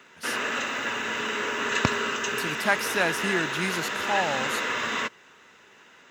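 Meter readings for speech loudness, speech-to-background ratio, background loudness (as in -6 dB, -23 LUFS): -29.5 LUFS, -2.0 dB, -27.5 LUFS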